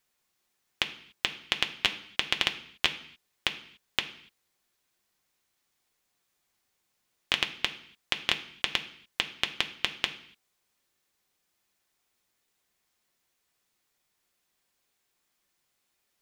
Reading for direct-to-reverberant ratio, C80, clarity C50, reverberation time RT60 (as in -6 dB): 4.0 dB, 15.5 dB, 13.0 dB, no single decay rate